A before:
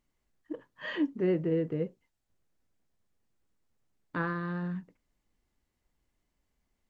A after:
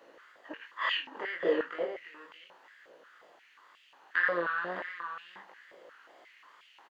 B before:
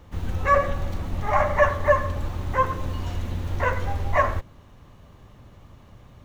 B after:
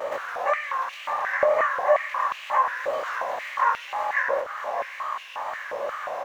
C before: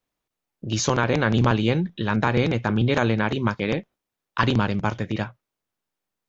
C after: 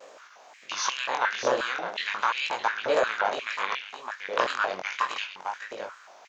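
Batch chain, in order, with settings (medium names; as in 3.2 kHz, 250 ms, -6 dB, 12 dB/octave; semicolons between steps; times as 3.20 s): spectral levelling over time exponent 0.6; compression 3:1, threshold -30 dBFS; wow and flutter 110 cents; chorus 0.35 Hz, delay 17.5 ms, depth 5.7 ms; delay 612 ms -8.5 dB; step-sequenced high-pass 5.6 Hz 540–2700 Hz; trim +5.5 dB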